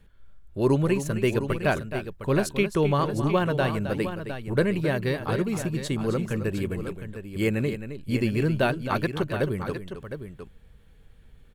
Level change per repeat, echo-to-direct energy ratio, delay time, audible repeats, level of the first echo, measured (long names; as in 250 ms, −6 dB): repeats not evenly spaced, −7.0 dB, 265 ms, 2, −10.5 dB